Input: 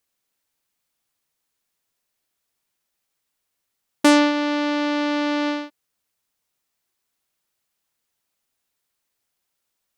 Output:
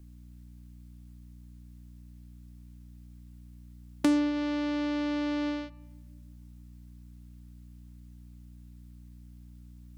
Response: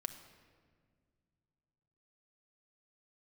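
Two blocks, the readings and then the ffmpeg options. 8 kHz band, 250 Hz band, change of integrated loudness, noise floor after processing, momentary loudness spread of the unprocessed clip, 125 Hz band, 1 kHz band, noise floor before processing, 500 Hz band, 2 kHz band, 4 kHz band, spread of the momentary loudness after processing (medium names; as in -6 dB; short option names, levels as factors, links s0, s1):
-15.5 dB, -7.0 dB, -9.5 dB, -50 dBFS, 11 LU, no reading, -15.5 dB, -78 dBFS, -12.5 dB, -14.5 dB, -14.5 dB, 8 LU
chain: -filter_complex "[0:a]aeval=exprs='val(0)+0.00224*(sin(2*PI*60*n/s)+sin(2*PI*2*60*n/s)/2+sin(2*PI*3*60*n/s)/3+sin(2*PI*4*60*n/s)/4+sin(2*PI*5*60*n/s)/5)':c=same,acrossover=split=210[s0][s1];[s1]acompressor=threshold=0.0126:ratio=5[s2];[s0][s2]amix=inputs=2:normalize=0,asplit=2[s3][s4];[1:a]atrim=start_sample=2205,asetrate=48510,aresample=44100[s5];[s4][s5]afir=irnorm=-1:irlink=0,volume=0.376[s6];[s3][s6]amix=inputs=2:normalize=0,volume=1.33"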